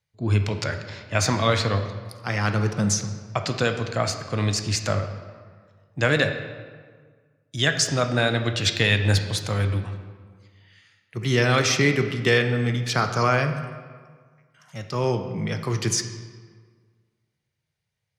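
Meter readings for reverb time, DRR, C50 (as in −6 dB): 1.7 s, 6.0 dB, 8.5 dB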